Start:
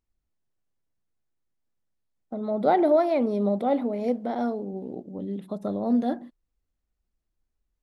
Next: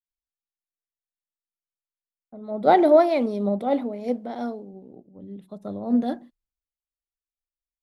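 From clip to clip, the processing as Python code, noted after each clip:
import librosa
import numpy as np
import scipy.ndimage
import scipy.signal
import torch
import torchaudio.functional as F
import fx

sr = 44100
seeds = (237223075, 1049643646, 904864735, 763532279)

y = fx.band_widen(x, sr, depth_pct=100)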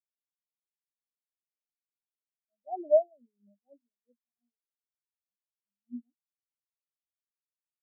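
y = fx.spectral_expand(x, sr, expansion=4.0)
y = y * librosa.db_to_amplitude(-8.0)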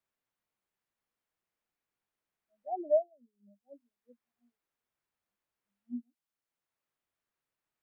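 y = fx.band_squash(x, sr, depth_pct=40)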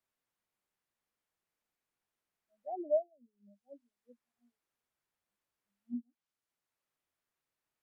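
y = fx.env_lowpass_down(x, sr, base_hz=580.0, full_db=-36.5)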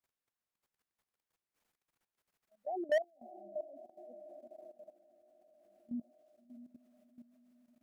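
y = fx.echo_diffused(x, sr, ms=650, feedback_pct=49, wet_db=-13.5)
y = fx.level_steps(y, sr, step_db=15)
y = np.clip(10.0 ** (33.5 / 20.0) * y, -1.0, 1.0) / 10.0 ** (33.5 / 20.0)
y = y * librosa.db_to_amplitude(8.0)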